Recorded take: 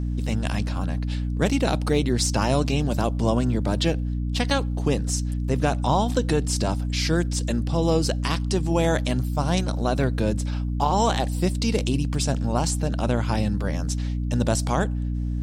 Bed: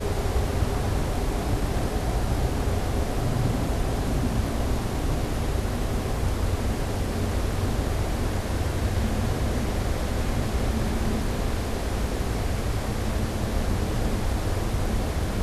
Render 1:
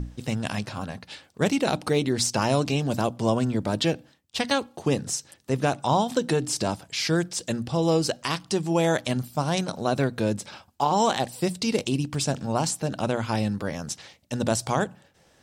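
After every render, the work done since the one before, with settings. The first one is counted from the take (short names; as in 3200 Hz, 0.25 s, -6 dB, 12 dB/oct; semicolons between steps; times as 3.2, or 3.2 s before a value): notches 60/120/180/240/300 Hz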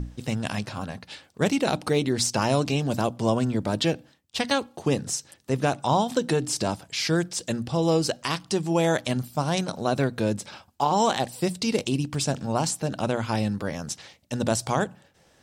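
nothing audible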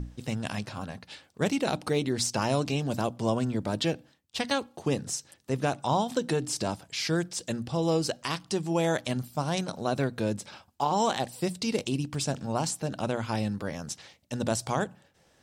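gain -4 dB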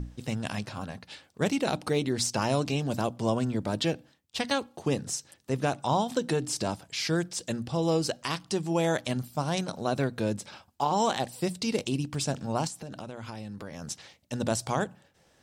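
12.67–13.82 compressor 16:1, threshold -35 dBFS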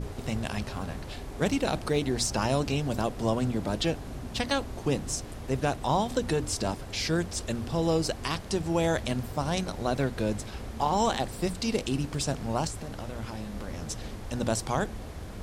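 add bed -13.5 dB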